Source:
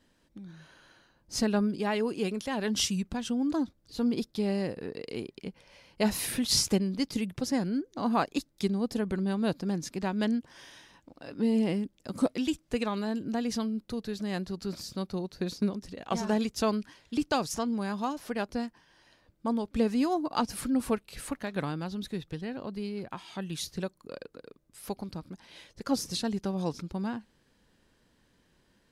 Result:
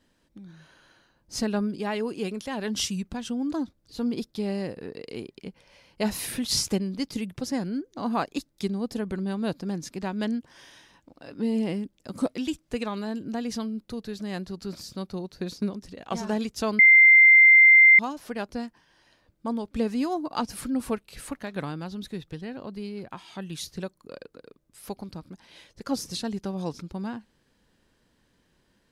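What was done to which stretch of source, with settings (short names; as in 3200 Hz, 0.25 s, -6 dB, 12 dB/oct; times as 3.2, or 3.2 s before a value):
16.79–17.99 bleep 2090 Hz -10.5 dBFS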